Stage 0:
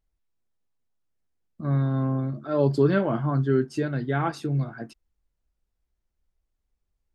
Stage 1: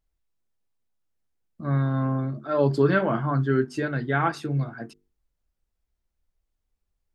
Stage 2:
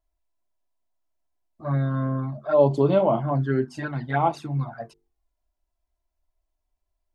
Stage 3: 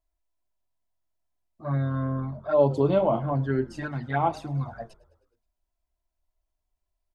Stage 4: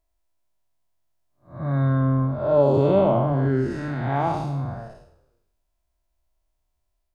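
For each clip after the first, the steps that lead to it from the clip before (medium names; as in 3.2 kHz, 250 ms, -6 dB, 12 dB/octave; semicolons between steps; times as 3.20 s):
dynamic bell 1.6 kHz, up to +6 dB, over -42 dBFS, Q 0.83; hum notches 50/100/150/200/250/300/350/400/450 Hz
high-order bell 760 Hz +9 dB 1.1 oct; touch-sensitive flanger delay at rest 3 ms, full sweep at -15.5 dBFS
frequency-shifting echo 105 ms, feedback 63%, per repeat -44 Hz, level -22 dB; trim -2.5 dB
spectral blur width 222 ms; on a send at -13 dB: reverberation RT60 0.85 s, pre-delay 4 ms; on the sum: trim +7 dB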